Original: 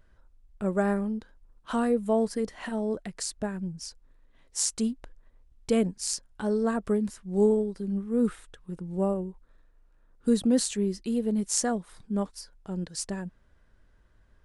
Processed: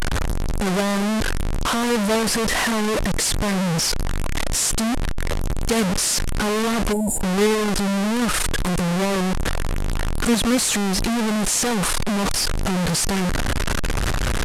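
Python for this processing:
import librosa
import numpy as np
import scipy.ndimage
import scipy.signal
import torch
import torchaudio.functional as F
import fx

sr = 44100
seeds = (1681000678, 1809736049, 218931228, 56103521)

y = fx.delta_mod(x, sr, bps=64000, step_db=-17.5)
y = fx.spec_box(y, sr, start_s=6.92, length_s=0.29, low_hz=970.0, high_hz=6900.0, gain_db=-25)
y = y * 10.0 ** (3.0 / 20.0)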